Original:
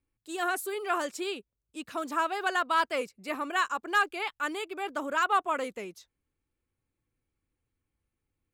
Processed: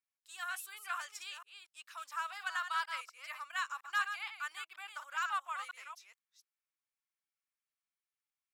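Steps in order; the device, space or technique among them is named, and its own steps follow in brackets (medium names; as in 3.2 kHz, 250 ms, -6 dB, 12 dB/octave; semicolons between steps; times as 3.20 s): chunks repeated in reverse 238 ms, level -8 dB; headphones lying on a table (high-pass 1.1 kHz 24 dB/octave; peaking EQ 5.5 kHz +5 dB 0.22 oct); trim -7.5 dB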